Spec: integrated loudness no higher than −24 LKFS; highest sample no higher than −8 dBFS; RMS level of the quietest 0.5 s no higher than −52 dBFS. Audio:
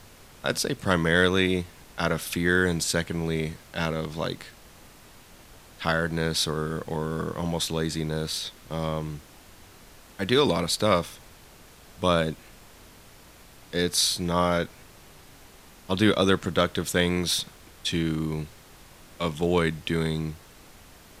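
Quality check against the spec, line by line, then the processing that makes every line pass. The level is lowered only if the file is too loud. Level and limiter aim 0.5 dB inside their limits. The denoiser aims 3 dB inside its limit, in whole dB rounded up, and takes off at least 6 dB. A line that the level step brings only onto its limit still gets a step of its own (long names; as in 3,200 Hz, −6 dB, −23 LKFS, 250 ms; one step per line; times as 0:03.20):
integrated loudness −26.0 LKFS: in spec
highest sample −4.0 dBFS: out of spec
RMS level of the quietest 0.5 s −50 dBFS: out of spec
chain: broadband denoise 6 dB, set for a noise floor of −50 dBFS
brickwall limiter −8.5 dBFS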